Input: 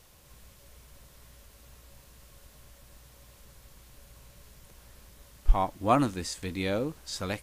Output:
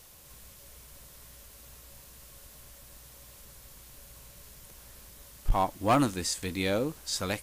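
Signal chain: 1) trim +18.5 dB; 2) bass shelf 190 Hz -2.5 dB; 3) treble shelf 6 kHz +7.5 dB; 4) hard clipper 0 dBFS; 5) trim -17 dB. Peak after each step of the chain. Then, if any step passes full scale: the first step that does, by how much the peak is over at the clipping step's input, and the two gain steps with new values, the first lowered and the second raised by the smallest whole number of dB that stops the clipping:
+9.5 dBFS, +8.0 dBFS, +8.5 dBFS, 0.0 dBFS, -17.0 dBFS; step 1, 8.5 dB; step 1 +9.5 dB, step 5 -8 dB

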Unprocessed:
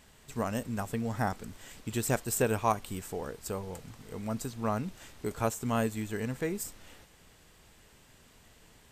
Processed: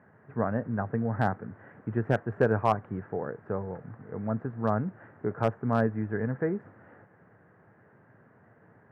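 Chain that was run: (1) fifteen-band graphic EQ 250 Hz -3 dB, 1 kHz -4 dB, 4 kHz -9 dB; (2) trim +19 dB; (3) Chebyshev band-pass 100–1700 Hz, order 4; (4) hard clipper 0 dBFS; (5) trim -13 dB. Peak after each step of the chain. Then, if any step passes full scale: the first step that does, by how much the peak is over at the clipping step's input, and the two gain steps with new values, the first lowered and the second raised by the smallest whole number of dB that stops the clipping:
-15.5 dBFS, +3.5 dBFS, +4.5 dBFS, 0.0 dBFS, -13.0 dBFS; step 2, 4.5 dB; step 2 +14 dB, step 5 -8 dB

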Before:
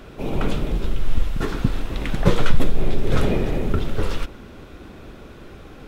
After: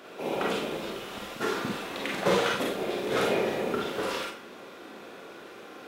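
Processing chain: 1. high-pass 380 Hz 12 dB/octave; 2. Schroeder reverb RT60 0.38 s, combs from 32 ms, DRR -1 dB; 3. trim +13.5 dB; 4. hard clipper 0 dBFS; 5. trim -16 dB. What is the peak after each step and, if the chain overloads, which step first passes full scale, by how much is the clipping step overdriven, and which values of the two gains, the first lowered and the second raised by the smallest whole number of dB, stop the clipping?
-11.0 dBFS, -9.5 dBFS, +4.0 dBFS, 0.0 dBFS, -16.0 dBFS; step 3, 4.0 dB; step 3 +9.5 dB, step 5 -12 dB

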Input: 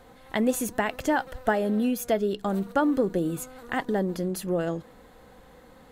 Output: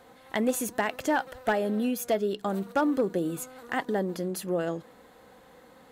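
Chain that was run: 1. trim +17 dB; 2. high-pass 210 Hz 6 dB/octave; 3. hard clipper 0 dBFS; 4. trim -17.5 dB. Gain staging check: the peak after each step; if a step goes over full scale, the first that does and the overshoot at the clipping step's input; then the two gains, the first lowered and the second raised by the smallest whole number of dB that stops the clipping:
+7.5 dBFS, +7.5 dBFS, 0.0 dBFS, -17.5 dBFS; step 1, 7.5 dB; step 1 +9 dB, step 4 -9.5 dB

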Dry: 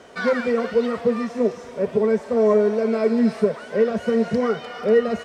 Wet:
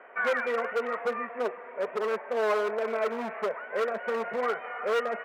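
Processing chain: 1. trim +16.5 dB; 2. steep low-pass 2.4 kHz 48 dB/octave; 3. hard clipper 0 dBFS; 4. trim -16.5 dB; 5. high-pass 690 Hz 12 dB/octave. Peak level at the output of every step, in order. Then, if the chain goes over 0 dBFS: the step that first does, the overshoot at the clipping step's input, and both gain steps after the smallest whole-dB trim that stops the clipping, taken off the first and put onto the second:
+9.5 dBFS, +9.5 dBFS, 0.0 dBFS, -16.5 dBFS, -15.0 dBFS; step 1, 9.5 dB; step 1 +6.5 dB, step 4 -6.5 dB

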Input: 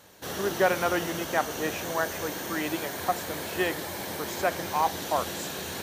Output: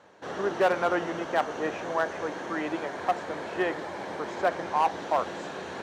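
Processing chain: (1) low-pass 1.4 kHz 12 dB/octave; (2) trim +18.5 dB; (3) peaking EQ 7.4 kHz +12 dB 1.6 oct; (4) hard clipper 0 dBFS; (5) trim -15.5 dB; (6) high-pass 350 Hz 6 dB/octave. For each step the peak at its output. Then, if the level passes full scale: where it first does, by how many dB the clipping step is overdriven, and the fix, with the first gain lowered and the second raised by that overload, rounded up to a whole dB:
-12.5 dBFS, +6.0 dBFS, +6.0 dBFS, 0.0 dBFS, -15.5 dBFS, -12.5 dBFS; step 2, 6.0 dB; step 2 +12.5 dB, step 5 -9.5 dB

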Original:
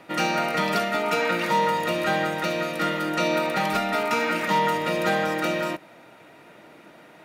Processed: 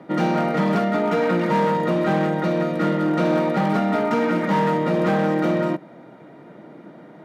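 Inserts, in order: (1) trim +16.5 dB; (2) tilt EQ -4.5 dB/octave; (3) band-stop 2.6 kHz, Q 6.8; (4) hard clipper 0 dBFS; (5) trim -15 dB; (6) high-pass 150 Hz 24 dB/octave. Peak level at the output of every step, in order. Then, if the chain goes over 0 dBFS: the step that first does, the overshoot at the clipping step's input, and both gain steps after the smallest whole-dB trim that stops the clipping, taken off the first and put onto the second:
+5.5 dBFS, +10.0 dBFS, +10.0 dBFS, 0.0 dBFS, -15.0 dBFS, -8.0 dBFS; step 1, 10.0 dB; step 1 +6.5 dB, step 5 -5 dB

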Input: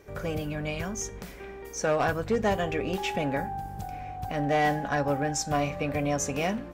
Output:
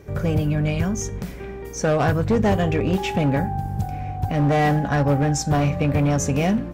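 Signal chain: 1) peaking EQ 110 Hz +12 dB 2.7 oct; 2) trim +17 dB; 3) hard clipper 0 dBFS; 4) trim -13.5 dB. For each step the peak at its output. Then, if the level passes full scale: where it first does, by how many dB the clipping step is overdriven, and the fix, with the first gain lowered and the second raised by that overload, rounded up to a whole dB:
-10.0 dBFS, +7.0 dBFS, 0.0 dBFS, -13.5 dBFS; step 2, 7.0 dB; step 2 +10 dB, step 4 -6.5 dB

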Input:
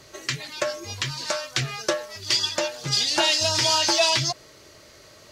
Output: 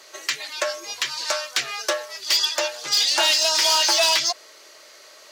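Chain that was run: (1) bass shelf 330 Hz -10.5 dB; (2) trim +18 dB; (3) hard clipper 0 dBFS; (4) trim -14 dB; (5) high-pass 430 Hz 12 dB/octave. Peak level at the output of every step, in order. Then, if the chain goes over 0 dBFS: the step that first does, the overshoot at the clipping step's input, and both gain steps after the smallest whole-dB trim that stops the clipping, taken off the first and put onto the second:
-10.0 dBFS, +8.0 dBFS, 0.0 dBFS, -14.0 dBFS, -8.5 dBFS; step 2, 8.0 dB; step 2 +10 dB, step 4 -6 dB

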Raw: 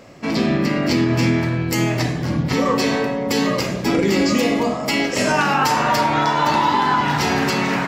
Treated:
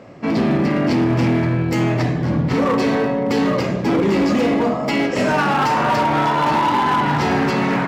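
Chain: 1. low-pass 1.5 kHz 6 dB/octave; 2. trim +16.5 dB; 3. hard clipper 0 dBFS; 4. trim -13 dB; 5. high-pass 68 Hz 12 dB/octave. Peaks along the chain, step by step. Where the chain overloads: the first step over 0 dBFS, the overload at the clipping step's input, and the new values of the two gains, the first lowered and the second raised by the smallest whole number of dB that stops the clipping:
-7.5 dBFS, +9.0 dBFS, 0.0 dBFS, -13.0 dBFS, -8.5 dBFS; step 2, 9.0 dB; step 2 +7.5 dB, step 4 -4 dB

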